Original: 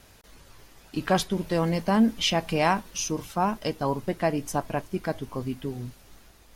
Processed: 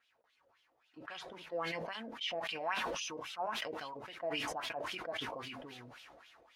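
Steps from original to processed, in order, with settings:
LFO wah 3.7 Hz 530–3,300 Hz, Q 3.5
notch comb filter 200 Hz
level that may fall only so fast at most 20 dB per second
level −8.5 dB

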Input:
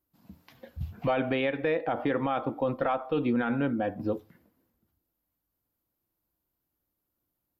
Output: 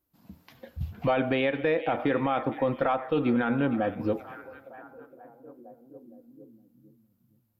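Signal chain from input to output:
echo through a band-pass that steps 463 ms, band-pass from 2,700 Hz, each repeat −0.7 octaves, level −11 dB
on a send at −24 dB: convolution reverb RT60 1.4 s, pre-delay 81 ms
on the sum: level +2 dB

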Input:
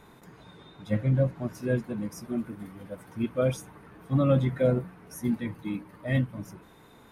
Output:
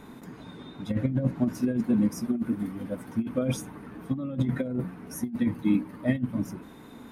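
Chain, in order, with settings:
parametric band 250 Hz +12 dB 0.61 octaves
compressor whose output falls as the input rises −23 dBFS, ratio −0.5
level −1 dB

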